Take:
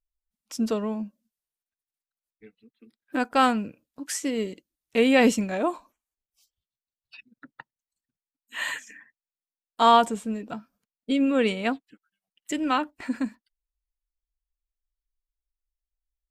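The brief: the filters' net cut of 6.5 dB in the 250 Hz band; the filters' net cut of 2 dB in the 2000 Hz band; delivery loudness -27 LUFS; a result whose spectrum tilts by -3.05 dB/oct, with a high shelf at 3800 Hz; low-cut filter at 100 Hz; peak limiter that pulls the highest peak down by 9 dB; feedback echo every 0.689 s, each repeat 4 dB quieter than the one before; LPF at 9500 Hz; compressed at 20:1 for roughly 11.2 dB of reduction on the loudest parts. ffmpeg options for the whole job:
-af "highpass=100,lowpass=9.5k,equalizer=f=250:t=o:g=-7,equalizer=f=2k:t=o:g=-3.5,highshelf=f=3.8k:g=4,acompressor=threshold=-23dB:ratio=20,alimiter=limit=-21.5dB:level=0:latency=1,aecho=1:1:689|1378|2067|2756|3445|4134|4823|5512|6201:0.631|0.398|0.25|0.158|0.0994|0.0626|0.0394|0.0249|0.0157,volume=7.5dB"

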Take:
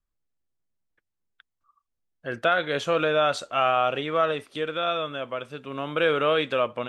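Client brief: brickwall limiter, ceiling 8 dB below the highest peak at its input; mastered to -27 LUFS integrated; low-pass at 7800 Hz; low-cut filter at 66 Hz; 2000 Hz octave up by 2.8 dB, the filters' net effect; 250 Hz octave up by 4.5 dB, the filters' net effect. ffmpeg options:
-af "highpass=66,lowpass=7.8k,equalizer=f=250:t=o:g=6,equalizer=f=2k:t=o:g=4,volume=0.5dB,alimiter=limit=-15.5dB:level=0:latency=1"

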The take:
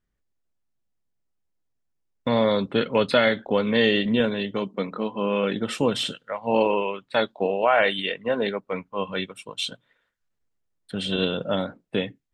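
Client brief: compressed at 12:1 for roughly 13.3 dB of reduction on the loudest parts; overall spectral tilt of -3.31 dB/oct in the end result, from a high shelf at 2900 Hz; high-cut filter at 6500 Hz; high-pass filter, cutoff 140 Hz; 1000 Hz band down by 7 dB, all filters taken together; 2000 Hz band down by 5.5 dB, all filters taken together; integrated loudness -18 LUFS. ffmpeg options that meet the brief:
-af "highpass=140,lowpass=6.5k,equalizer=f=1k:t=o:g=-8.5,equalizer=f=2k:t=o:g=-6,highshelf=f=2.9k:g=3.5,acompressor=threshold=-31dB:ratio=12,volume=18.5dB"

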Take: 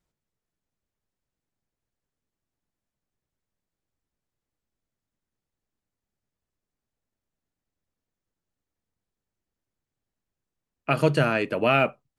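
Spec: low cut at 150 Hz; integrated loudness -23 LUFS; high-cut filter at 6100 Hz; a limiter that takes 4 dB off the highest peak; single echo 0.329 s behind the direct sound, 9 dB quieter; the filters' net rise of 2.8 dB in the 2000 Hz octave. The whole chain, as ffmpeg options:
-af "highpass=150,lowpass=6.1k,equalizer=f=2k:t=o:g=4,alimiter=limit=-10dB:level=0:latency=1,aecho=1:1:329:0.355,volume=0.5dB"

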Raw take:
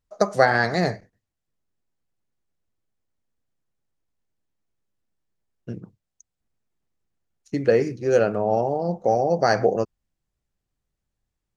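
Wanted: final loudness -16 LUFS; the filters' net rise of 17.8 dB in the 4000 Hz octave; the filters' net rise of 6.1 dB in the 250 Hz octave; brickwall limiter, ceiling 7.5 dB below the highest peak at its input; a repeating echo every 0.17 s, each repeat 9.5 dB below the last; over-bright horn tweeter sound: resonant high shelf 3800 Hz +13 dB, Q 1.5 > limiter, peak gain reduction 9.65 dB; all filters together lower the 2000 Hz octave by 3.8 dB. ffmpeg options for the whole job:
-af "equalizer=f=250:t=o:g=8.5,equalizer=f=2k:t=o:g=-4,equalizer=f=4k:t=o:g=8.5,alimiter=limit=-10dB:level=0:latency=1,highshelf=f=3.8k:t=q:w=1.5:g=13,aecho=1:1:170|340|510|680:0.335|0.111|0.0365|0.012,volume=8dB,alimiter=limit=-4.5dB:level=0:latency=1"

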